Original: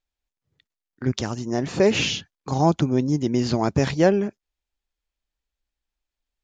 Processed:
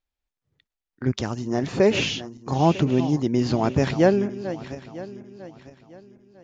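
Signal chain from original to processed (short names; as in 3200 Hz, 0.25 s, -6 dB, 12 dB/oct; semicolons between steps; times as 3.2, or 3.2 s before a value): regenerating reverse delay 0.475 s, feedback 54%, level -13 dB; high shelf 6200 Hz -9 dB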